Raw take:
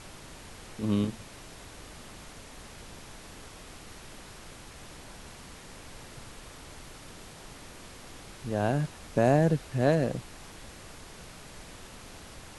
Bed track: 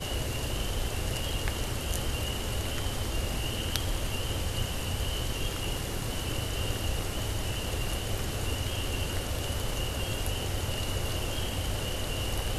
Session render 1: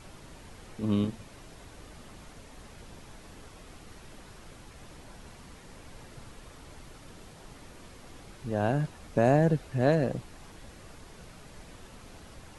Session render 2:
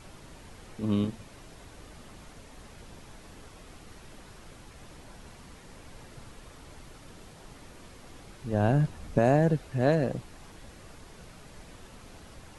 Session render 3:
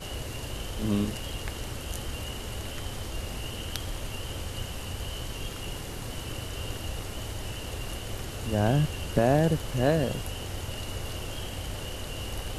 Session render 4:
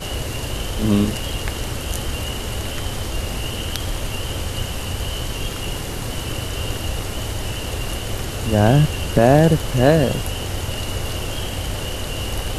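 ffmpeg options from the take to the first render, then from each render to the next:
-af "afftdn=nr=6:nf=-48"
-filter_complex "[0:a]asettb=1/sr,asplit=3[a][b][c];[a]atrim=end=8.534[d];[b]atrim=start=8.53:end=9.19,asetpts=PTS-STARTPTS,afade=t=in:d=0.004:c=qsin,afade=t=out:st=0.656:d=0.004:c=qsin,lowshelf=f=220:g=7.5[e];[c]atrim=start=9.186[f];[d][e]acrossfade=d=0.004:c1=hsin:c2=qsin[g];[g][f]acrossfade=d=0.004:c1=qsin:c2=hsin"
-filter_complex "[1:a]volume=-4dB[a];[0:a][a]amix=inputs=2:normalize=0"
-af "volume=10dB,alimiter=limit=-1dB:level=0:latency=1"

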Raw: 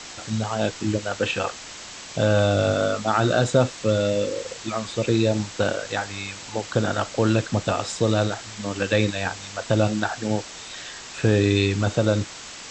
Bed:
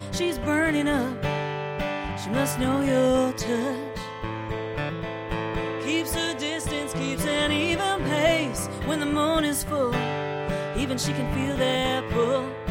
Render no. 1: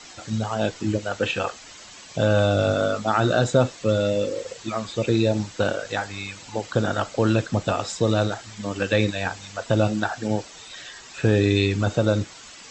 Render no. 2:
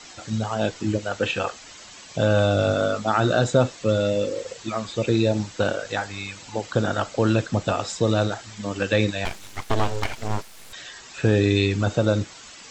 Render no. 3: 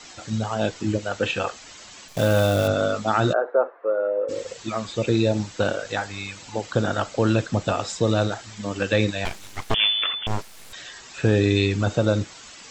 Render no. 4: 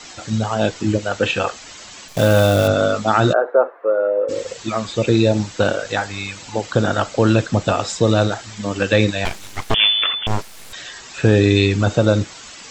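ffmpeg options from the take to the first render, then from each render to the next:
-af "afftdn=nr=9:nf=-39"
-filter_complex "[0:a]asettb=1/sr,asplit=3[a][b][c];[a]atrim=end=9.254[d];[b]atrim=start=9.25:end=10.73,asetpts=PTS-STARTPTS,afade=t=in:d=0.004:c=qsin,afade=t=out:st=1.476:d=0.004:c=qsin,aeval=exprs='abs(val(0))':c=same[e];[c]atrim=start=10.726[f];[d][e]acrossfade=d=0.004:c1=hsin:c2=qsin[g];[g][f]acrossfade=d=0.004:c1=qsin:c2=hsin"
-filter_complex "[0:a]asettb=1/sr,asplit=3[a][b][c];[a]atrim=end=2.084[d];[b]atrim=start=2.08:end=2.68,asetpts=PTS-STARTPTS,afade=t=in:d=0.004:c=qsin,afade=t=out:st=0.596:d=0.004:c=qsin,acrusher=bits=6:dc=4:mix=0:aa=0.000001[e];[c]atrim=start=2.676[f];[d][e]acrossfade=d=0.004:c1=hsin:c2=qsin[g];[g][f]acrossfade=d=0.004:c1=qsin:c2=hsin,asplit=3[h][i][j];[h]afade=t=out:st=3.32:d=0.02[k];[i]asuperpass=centerf=780:order=8:qfactor=0.67,afade=t=in:st=3.32:d=0.02,afade=t=out:st=4.28:d=0.02[l];[j]afade=t=in:st=4.28:d=0.02[m];[k][l][m]amix=inputs=3:normalize=0,asettb=1/sr,asplit=3[n][o][p];[n]atrim=end=9.744[q];[o]atrim=start=9.74:end=10.27,asetpts=PTS-STARTPTS,afade=t=in:d=0.004:c=qsin,afade=t=out:st=0.526:d=0.004:c=qsin,lowpass=f=3k:t=q:w=0.5098,lowpass=f=3k:t=q:w=0.6013,lowpass=f=3k:t=q:w=0.9,lowpass=f=3k:t=q:w=2.563,afreqshift=-3500[r];[p]atrim=start=10.266[s];[q][r]acrossfade=d=0.004:c1=hsin:c2=qsin[t];[t][s]acrossfade=d=0.004:c1=qsin:c2=hsin"
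-af "volume=5.5dB,alimiter=limit=-2dB:level=0:latency=1"

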